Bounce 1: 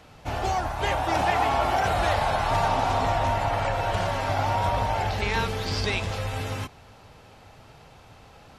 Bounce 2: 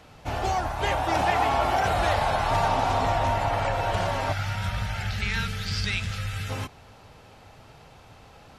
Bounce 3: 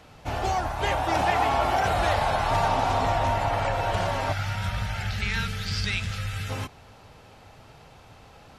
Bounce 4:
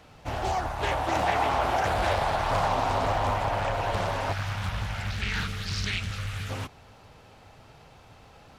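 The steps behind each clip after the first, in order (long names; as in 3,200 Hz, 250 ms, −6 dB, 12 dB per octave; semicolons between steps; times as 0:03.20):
gain on a spectral selection 0:04.32–0:06.49, 230–1,200 Hz −14 dB
no processing that can be heard
log-companded quantiser 8 bits; highs frequency-modulated by the lows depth 0.63 ms; level −2 dB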